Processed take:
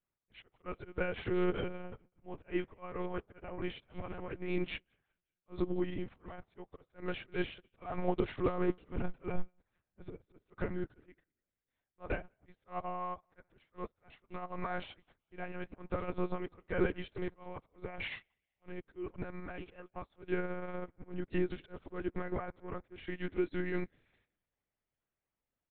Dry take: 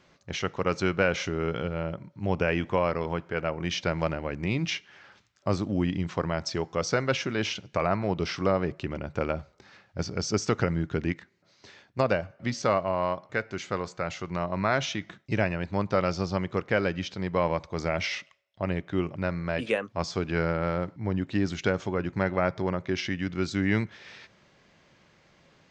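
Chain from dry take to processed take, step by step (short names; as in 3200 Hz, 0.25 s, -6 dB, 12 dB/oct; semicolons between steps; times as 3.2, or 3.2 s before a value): de-esser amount 85%; limiter -22.5 dBFS, peak gain reduction 10.5 dB; high shelf 2900 Hz -8 dB; comb 2.6 ms, depth 75%; auto swell 0.139 s; 8.57–10.12 bell 76 Hz +10.5 dB 0.25 oct; feedback echo 0.191 s, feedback 51%, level -17 dB; monotone LPC vocoder at 8 kHz 180 Hz; upward expander 2.5:1, over -52 dBFS; gain +4.5 dB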